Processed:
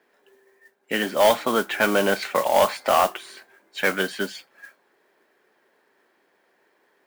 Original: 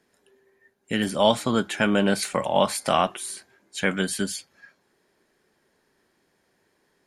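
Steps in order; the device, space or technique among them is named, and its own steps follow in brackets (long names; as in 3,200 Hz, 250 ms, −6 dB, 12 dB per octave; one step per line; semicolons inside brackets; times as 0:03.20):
carbon microphone (band-pass filter 390–2,800 Hz; soft clipping −15 dBFS, distortion −14 dB; noise that follows the level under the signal 15 dB)
level +6 dB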